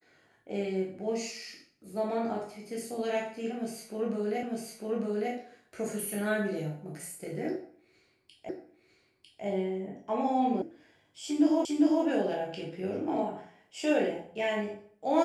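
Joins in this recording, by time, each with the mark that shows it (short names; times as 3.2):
4.43 repeat of the last 0.9 s
8.49 repeat of the last 0.95 s
10.62 sound cut off
11.65 repeat of the last 0.4 s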